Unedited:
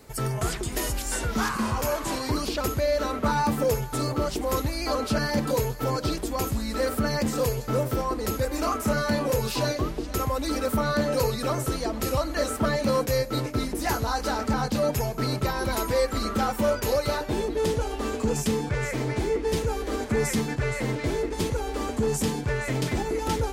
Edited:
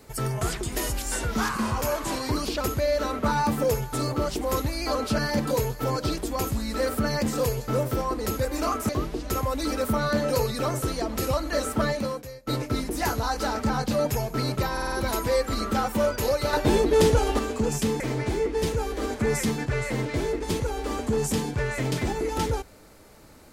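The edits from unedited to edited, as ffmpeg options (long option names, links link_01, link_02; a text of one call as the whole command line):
ffmpeg -i in.wav -filter_complex "[0:a]asplit=10[link_01][link_02][link_03][link_04][link_05][link_06][link_07][link_08][link_09][link_10];[link_01]atrim=end=8.892[link_11];[link_02]atrim=start=9.728:end=13.31,asetpts=PTS-STARTPTS,afade=type=out:start_time=3.002:duration=0.58:curve=qua:silence=0.0841395[link_12];[link_03]atrim=start=13.31:end=15.612,asetpts=PTS-STARTPTS,afade=type=in:duration=0.004:curve=hsin:silence=0.0841395[link_13];[link_04]atrim=start=15.558:end=15.612[link_14];[link_05]atrim=start=15.558:end=15.612[link_15];[link_06]atrim=start=15.558:end=15.612[link_16];[link_07]atrim=start=15.558:end=17.172[link_17];[link_08]atrim=start=17.168:end=18.032,asetpts=PTS-STARTPTS,volume=6.5dB[link_18];[link_09]atrim=start=18.028:end=18.642[link_19];[link_10]atrim=start=18.898[link_20];[link_12][link_13]concat=n=2:v=0:a=1[link_21];[link_11][link_21]acrossfade=duration=0.004:curve1=hsin:curve2=hsin[link_22];[link_22][link_14]acrossfade=duration=0.004:curve1=hsin:curve2=hsin[link_23];[link_23][link_15]acrossfade=duration=0.004:curve1=hsin:curve2=hsin[link_24];[link_24][link_16]acrossfade=duration=0.004:curve1=hsin:curve2=hsin[link_25];[link_25][link_17]acrossfade=duration=0.004:curve1=hsin:curve2=hsin[link_26];[link_26][link_18]acrossfade=duration=0.004:curve1=hsin:curve2=hsin[link_27];[link_27][link_19]acrossfade=duration=0.004:curve1=hsin:curve2=hsin[link_28];[link_28][link_20]acrossfade=duration=0.004:curve1=hsin:curve2=hsin" out.wav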